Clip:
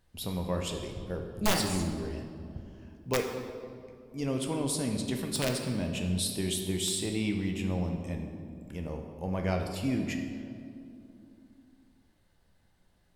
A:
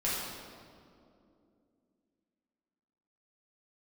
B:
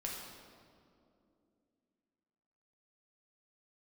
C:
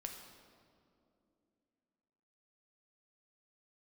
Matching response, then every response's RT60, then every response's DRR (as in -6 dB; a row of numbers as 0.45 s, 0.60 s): C; 2.6 s, 2.6 s, 2.6 s; -8.5 dB, -3.0 dB, 2.5 dB